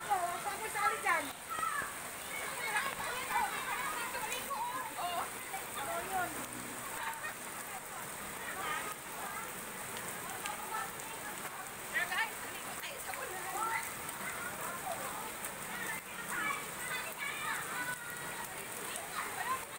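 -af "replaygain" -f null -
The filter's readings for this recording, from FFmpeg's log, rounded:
track_gain = +20.0 dB
track_peak = 0.076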